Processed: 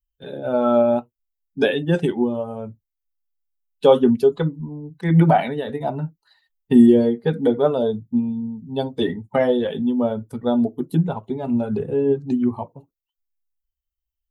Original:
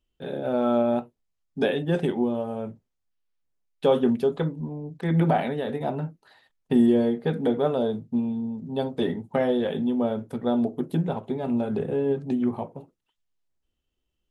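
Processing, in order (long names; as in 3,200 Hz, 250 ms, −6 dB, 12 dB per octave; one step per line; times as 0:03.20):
spectral dynamics exaggerated over time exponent 1.5
level +8.5 dB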